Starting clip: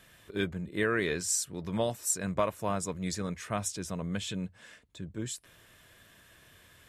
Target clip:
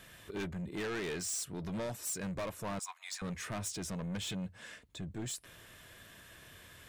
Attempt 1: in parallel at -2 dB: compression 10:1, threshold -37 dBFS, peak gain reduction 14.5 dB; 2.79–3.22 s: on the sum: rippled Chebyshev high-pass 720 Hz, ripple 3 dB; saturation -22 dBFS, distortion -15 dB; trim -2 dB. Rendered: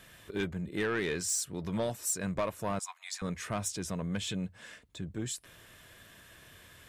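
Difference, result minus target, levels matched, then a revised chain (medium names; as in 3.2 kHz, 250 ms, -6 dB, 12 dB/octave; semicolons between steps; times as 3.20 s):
saturation: distortion -8 dB
in parallel at -2 dB: compression 10:1, threshold -37 dBFS, peak gain reduction 14.5 dB; 2.79–3.22 s: on the sum: rippled Chebyshev high-pass 720 Hz, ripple 3 dB; saturation -32.5 dBFS, distortion -6 dB; trim -2 dB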